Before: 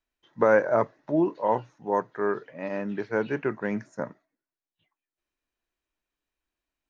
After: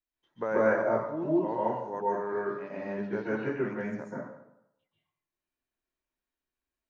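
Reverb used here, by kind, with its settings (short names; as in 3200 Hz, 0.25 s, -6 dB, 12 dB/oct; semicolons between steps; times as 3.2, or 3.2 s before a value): plate-style reverb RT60 0.79 s, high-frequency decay 0.65×, pre-delay 0.12 s, DRR -7 dB; gain -12 dB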